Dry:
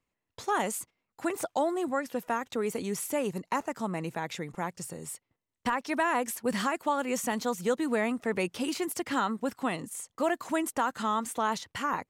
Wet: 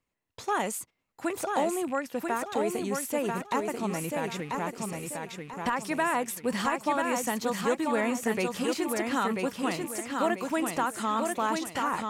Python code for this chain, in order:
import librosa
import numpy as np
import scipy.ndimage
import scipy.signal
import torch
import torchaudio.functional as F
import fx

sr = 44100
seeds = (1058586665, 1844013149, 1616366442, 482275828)

y = fx.rattle_buzz(x, sr, strikes_db=-48.0, level_db=-38.0)
y = fx.echo_feedback(y, sr, ms=989, feedback_pct=35, wet_db=-4)